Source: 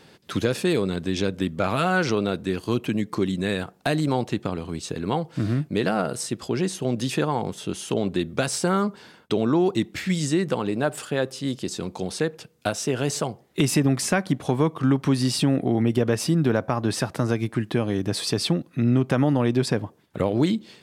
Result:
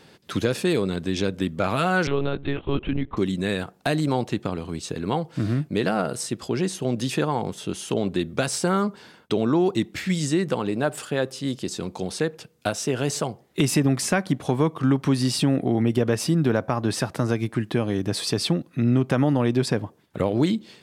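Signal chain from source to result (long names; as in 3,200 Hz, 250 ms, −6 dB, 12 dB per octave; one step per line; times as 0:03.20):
0:02.07–0:03.17: one-pitch LPC vocoder at 8 kHz 140 Hz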